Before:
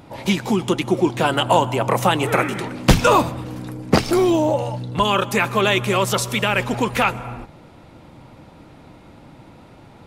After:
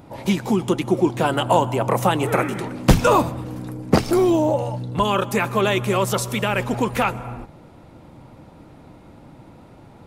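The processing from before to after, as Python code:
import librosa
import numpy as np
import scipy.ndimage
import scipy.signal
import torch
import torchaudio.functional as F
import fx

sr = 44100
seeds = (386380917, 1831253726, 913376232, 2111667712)

y = fx.peak_eq(x, sr, hz=3200.0, db=-5.5, octaves=2.5)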